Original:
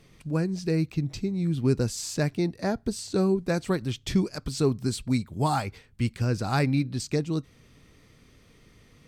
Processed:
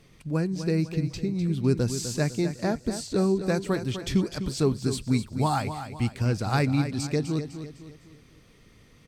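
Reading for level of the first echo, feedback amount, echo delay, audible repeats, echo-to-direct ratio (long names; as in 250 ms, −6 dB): −10.0 dB, 42%, 252 ms, 4, −9.0 dB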